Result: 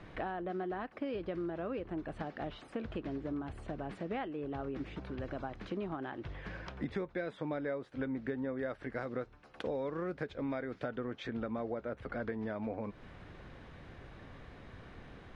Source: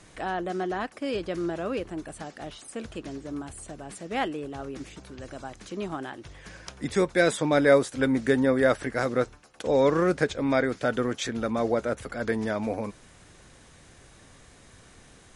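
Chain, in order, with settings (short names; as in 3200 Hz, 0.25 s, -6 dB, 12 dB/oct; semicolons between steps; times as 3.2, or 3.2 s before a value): 8.59–10.87 high shelf 6100 Hz +11.5 dB; compressor 8:1, threshold -37 dBFS, peak gain reduction 22.5 dB; air absorption 360 m; gain +3 dB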